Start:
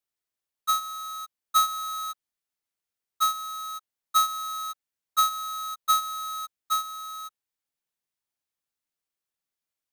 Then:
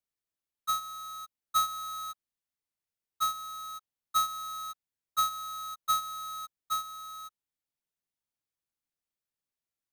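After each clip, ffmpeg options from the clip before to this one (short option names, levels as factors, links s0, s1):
-af "lowshelf=f=340:g=7,volume=0.501"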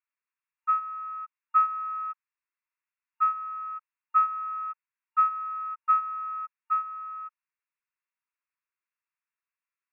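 -af "afftfilt=real='re*between(b*sr/4096,910,2800)':imag='im*between(b*sr/4096,910,2800)':win_size=4096:overlap=0.75,volume=2"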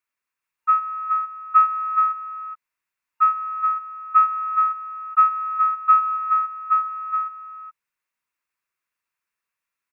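-af "aecho=1:1:421:0.447,volume=2.24"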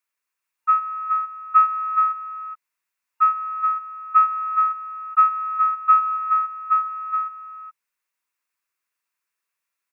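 -af "bass=f=250:g=-6,treble=f=4000:g=4"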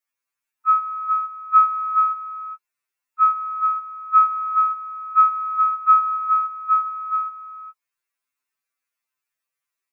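-af "afftfilt=real='re*2.45*eq(mod(b,6),0)':imag='im*2.45*eq(mod(b,6),0)':win_size=2048:overlap=0.75"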